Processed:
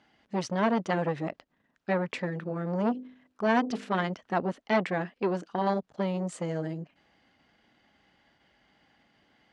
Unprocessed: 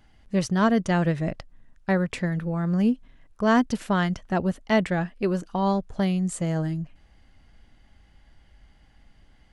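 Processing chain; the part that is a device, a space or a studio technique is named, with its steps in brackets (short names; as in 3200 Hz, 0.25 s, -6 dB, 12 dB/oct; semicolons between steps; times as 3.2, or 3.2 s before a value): 2.89–4.03 de-hum 50.66 Hz, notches 12; public-address speaker with an overloaded transformer (core saturation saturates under 730 Hz; BPF 230–5100 Hz)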